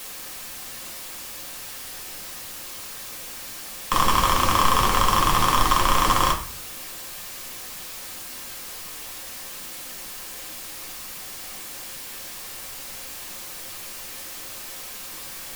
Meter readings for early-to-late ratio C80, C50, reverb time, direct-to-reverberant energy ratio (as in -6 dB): 15.5 dB, 10.5 dB, 0.45 s, 0.5 dB